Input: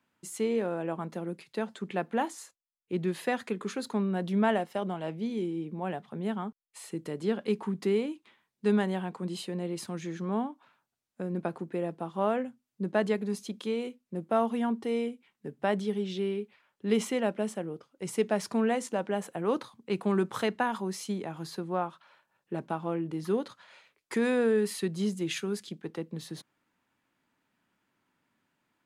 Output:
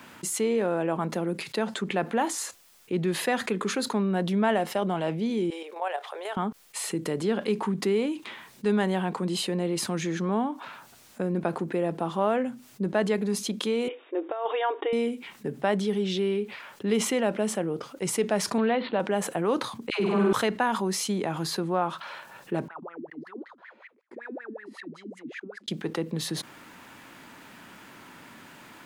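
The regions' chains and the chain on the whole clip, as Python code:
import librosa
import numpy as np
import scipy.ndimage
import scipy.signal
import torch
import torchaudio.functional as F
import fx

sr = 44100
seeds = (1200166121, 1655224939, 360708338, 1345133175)

y = fx.chain(x, sr, fx.steep_highpass(hz=500.0, slope=36),
    fx.level_steps(step_db=9), at=(5.5, 6.37))
y = fx.chain(y, sr, fx.brickwall_bandpass(low_hz=290.0, high_hz=3800.0),
    fx.over_compress(threshold_db=-32.0, ratio=-0.5), at=(13.88, 14.93))
y = fx.chain(y, sr, fx.block_float(bits=5),
    fx.steep_lowpass(hz=4200.0, slope=96), at=(18.58, 19.0))
y = fx.chain(y, sr, fx.high_shelf(hz=6500.0, db=-10.5),
    fx.dispersion(late='lows', ms=101.0, hz=800.0),
    fx.room_flutter(wall_m=8.5, rt60_s=1.5), at=(19.9, 20.33))
y = fx.chain(y, sr, fx.level_steps(step_db=21),
    fx.wah_lfo(hz=5.3, low_hz=230.0, high_hz=2100.0, q=16.0), at=(22.68, 25.68))
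y = fx.low_shelf(y, sr, hz=230.0, db=-4.0)
y = fx.env_flatten(y, sr, amount_pct=50)
y = y * 10.0 ** (1.0 / 20.0)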